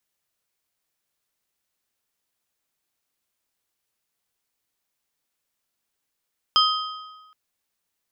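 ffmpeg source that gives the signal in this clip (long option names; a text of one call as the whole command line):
ffmpeg -f lavfi -i "aevalsrc='0.158*pow(10,-3*t/1.28)*sin(2*PI*1260*t)+0.141*pow(10,-3*t/0.972)*sin(2*PI*3150*t)+0.126*pow(10,-3*t/0.844)*sin(2*PI*5040*t)':duration=0.77:sample_rate=44100" out.wav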